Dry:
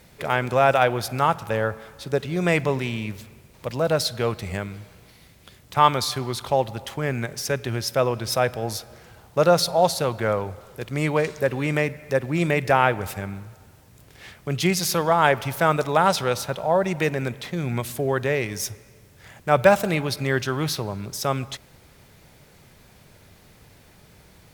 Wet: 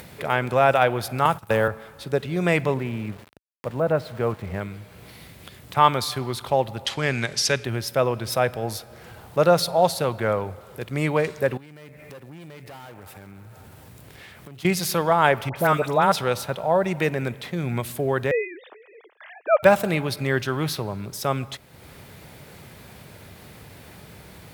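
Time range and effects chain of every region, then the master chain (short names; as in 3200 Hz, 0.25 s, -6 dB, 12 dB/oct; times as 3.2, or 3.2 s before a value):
1.25–1.68 gate -34 dBFS, range -19 dB + high shelf 5900 Hz +10.5 dB + three-band squash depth 100%
2.74–4.61 LPF 1700 Hz + sample gate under -40 dBFS
6.85–7.64 LPF 9900 Hz + bell 4600 Hz +14 dB 2.1 oct
11.57–14.65 block floating point 5-bit + tube stage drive 25 dB, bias 0.6 + compressor 2.5:1, threshold -51 dBFS
15.49–16.12 upward compressor, threshold -33 dBFS + dispersion highs, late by 73 ms, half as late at 1600 Hz
18.31–19.63 sine-wave speech + HPF 360 Hz 24 dB/oct + gate with hold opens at -52 dBFS, closes at -58 dBFS
whole clip: HPF 63 Hz; bell 6100 Hz -5 dB 0.77 oct; upward compressor, threshold -35 dBFS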